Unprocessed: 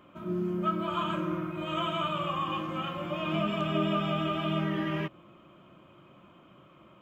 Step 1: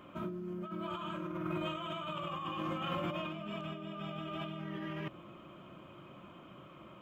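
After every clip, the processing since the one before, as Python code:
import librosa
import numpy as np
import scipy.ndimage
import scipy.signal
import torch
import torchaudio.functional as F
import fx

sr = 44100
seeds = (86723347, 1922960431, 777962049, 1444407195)

y = fx.over_compress(x, sr, threshold_db=-37.0, ratio=-1.0)
y = y * librosa.db_to_amplitude(-3.0)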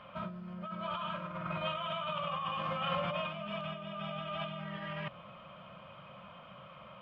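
y = fx.curve_eq(x, sr, hz=(200.0, 340.0, 520.0, 4700.0, 6600.0), db=(0, -20, 4, 4, -13))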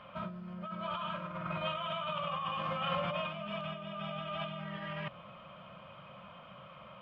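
y = x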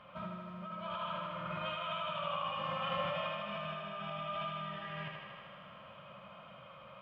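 y = fx.echo_thinned(x, sr, ms=78, feedback_pct=81, hz=200.0, wet_db=-4)
y = y * librosa.db_to_amplitude(-4.0)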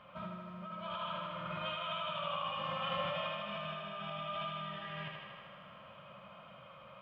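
y = fx.dynamic_eq(x, sr, hz=3500.0, q=2.4, threshold_db=-58.0, ratio=4.0, max_db=4)
y = y * librosa.db_to_amplitude(-1.0)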